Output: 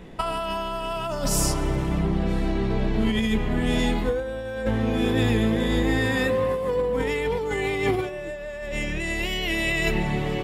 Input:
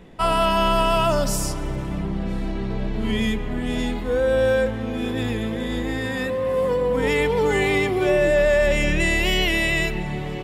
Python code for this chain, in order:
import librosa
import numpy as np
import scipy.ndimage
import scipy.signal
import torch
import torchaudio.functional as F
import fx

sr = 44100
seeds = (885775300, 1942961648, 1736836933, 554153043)

y = fx.over_compress(x, sr, threshold_db=-23.0, ratio=-0.5)
y = fx.doubler(y, sr, ms=18.0, db=-12)